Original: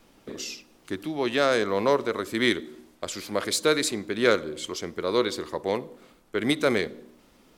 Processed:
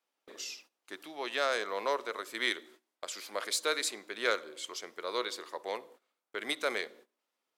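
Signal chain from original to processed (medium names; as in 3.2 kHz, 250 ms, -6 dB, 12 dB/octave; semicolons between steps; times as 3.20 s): high-pass 620 Hz 12 dB/octave; gate -50 dBFS, range -18 dB; trim -5.5 dB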